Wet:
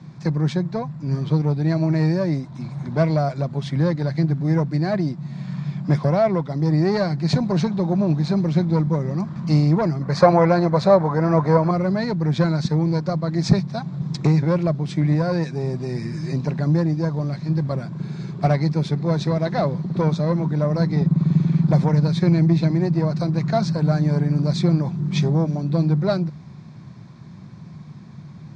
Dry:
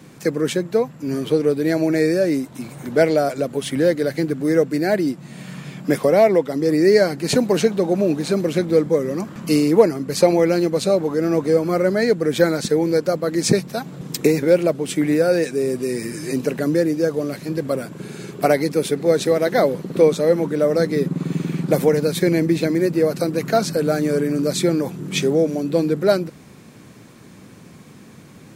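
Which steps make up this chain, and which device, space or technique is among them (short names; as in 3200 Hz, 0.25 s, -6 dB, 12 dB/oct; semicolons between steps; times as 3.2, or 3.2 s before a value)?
guitar amplifier (tube stage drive 8 dB, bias 0.45; tone controls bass +14 dB, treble +10 dB; speaker cabinet 86–4500 Hz, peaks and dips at 150 Hz +5 dB, 270 Hz -8 dB, 460 Hz -8 dB, 700 Hz +4 dB, 990 Hz +7 dB, 2900 Hz -9 dB); 10.01–11.71 band shelf 940 Hz +10 dB 2.5 oct; gain -4.5 dB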